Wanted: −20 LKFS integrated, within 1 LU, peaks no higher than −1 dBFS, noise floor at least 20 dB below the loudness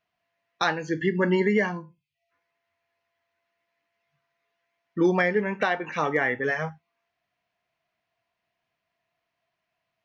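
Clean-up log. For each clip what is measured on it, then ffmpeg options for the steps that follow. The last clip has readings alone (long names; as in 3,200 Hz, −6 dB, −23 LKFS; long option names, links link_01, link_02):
integrated loudness −25.0 LKFS; sample peak −11.5 dBFS; target loudness −20.0 LKFS
→ -af "volume=5dB"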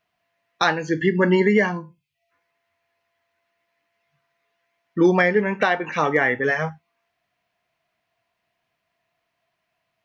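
integrated loudness −20.0 LKFS; sample peak −6.5 dBFS; background noise floor −77 dBFS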